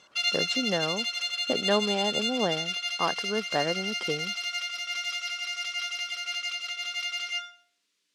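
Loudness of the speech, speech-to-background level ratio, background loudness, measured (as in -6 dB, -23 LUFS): -31.0 LUFS, -1.5 dB, -29.5 LUFS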